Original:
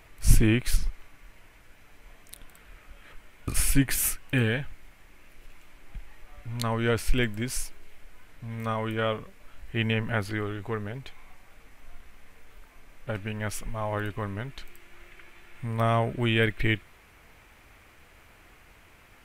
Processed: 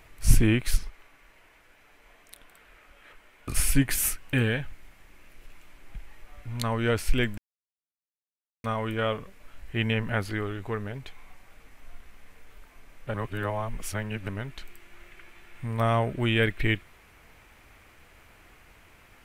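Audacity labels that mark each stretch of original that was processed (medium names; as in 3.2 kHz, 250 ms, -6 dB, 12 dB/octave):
0.780000	3.490000	tone controls bass -10 dB, treble -4 dB
7.380000	8.640000	mute
13.140000	14.290000	reverse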